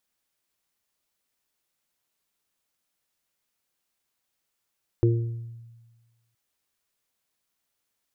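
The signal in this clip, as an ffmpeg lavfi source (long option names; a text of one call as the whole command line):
ffmpeg -f lavfi -i "aevalsrc='0.141*pow(10,-3*t/1.38)*sin(2*PI*116*t)+0.0141*pow(10,-3*t/0.74)*sin(2*PI*232*t)+0.126*pow(10,-3*t/0.57)*sin(2*PI*348*t)+0.0335*pow(10,-3*t/0.58)*sin(2*PI*464*t)':duration=1.32:sample_rate=44100" out.wav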